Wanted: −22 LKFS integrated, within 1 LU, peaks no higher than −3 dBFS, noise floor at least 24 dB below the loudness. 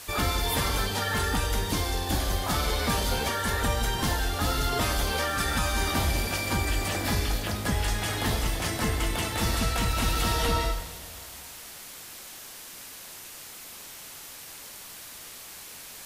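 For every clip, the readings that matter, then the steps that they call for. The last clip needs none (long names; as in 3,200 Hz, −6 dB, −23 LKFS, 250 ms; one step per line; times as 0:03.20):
number of dropouts 2; longest dropout 2.1 ms; background noise floor −44 dBFS; target noise floor −51 dBFS; integrated loudness −27.0 LKFS; sample peak −14.5 dBFS; target loudness −22.0 LKFS
→ repair the gap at 0:04.07/0:10.15, 2.1 ms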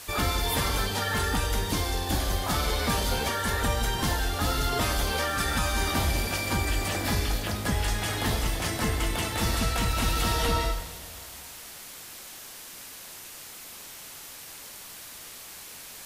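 number of dropouts 0; background noise floor −44 dBFS; target noise floor −51 dBFS
→ broadband denoise 7 dB, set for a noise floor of −44 dBFS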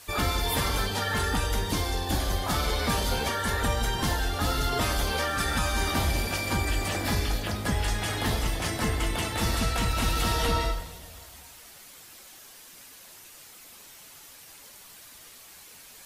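background noise floor −49 dBFS; target noise floor −52 dBFS
→ broadband denoise 6 dB, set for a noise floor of −49 dBFS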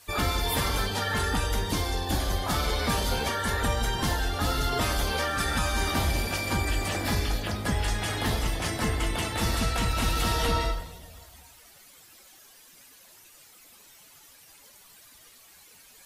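background noise floor −54 dBFS; integrated loudness −27.5 LKFS; sample peak −15.0 dBFS; target loudness −22.0 LKFS
→ level +5.5 dB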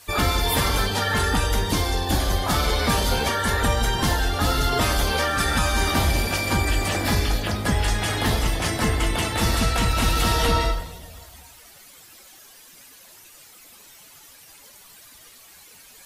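integrated loudness −22.0 LKFS; sample peak −9.5 dBFS; background noise floor −48 dBFS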